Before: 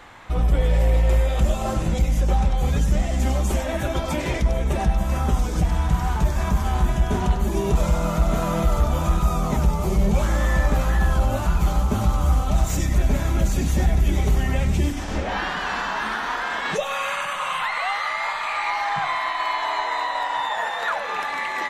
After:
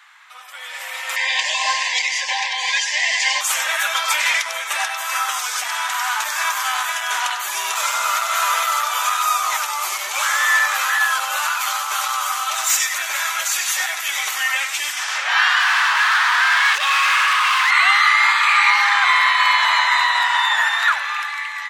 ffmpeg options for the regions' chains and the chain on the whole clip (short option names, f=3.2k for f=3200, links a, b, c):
-filter_complex "[0:a]asettb=1/sr,asplit=3[a][b][c];[a]atrim=end=1.164[d];[b]atrim=start=1.16:end=3.41,asetpts=PTS-STARTPTS,afade=t=in:d=0.004:c=qsin,afade=t=out:st=2.246:d=0.004:c=qsin,asuperstop=centerf=1300:order=20:qfactor=2.5,highpass=f=380:w=0.5412,highpass=f=380:w=1.3066,equalizer=f=390:t=q:w=4:g=4,equalizer=f=1.1k:t=q:w=4:g=8,equalizer=f=2k:t=q:w=4:g=8,equalizer=f=2.9k:t=q:w=4:g=4,equalizer=f=4.7k:t=q:w=4:g=9,lowpass=f=7.1k:w=0.5412,lowpass=f=7.1k:w=1.3066[e];[c]atrim=start=3.406[f];[d][e]acrossfade=d=0.004:c1=hsin:c2=qsin[g];[g][f]acrossfade=d=0.004:c1=qsin:c2=hsin,asettb=1/sr,asplit=3[h][i][j];[h]atrim=end=15.604[k];[i]atrim=start=15.6:end=17.71,asetpts=PTS-STARTPTS,afade=t=in:d=0.004:c=qsin,afade=t=out:st=2.106:d=0.004:c=qsin,bandreject=f=1.4k:w=22,asoftclip=type=hard:threshold=-28.5dB,asplit=2[l][m];[m]highpass=f=720:p=1,volume=18dB,asoftclip=type=tanh:threshold=-20dB[n];[l][n]amix=inputs=2:normalize=0,lowpass=f=2.1k:p=1,volume=-6dB[o];[j]atrim=start=17.706[p];[k][o]acrossfade=d=0.004:c1=hsin:c2=qsin[q];[q][p]acrossfade=d=0.004:c1=qsin:c2=hsin,highpass=f=1.2k:w=0.5412,highpass=f=1.2k:w=1.3066,dynaudnorm=f=170:g=11:m=15dB"